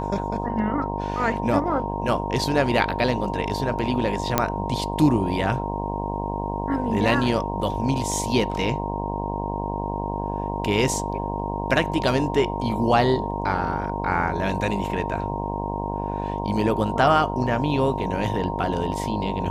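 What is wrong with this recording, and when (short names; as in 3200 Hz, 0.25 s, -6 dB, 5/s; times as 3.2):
buzz 50 Hz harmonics 21 -29 dBFS
tone 930 Hz -30 dBFS
4.38 pop -3 dBFS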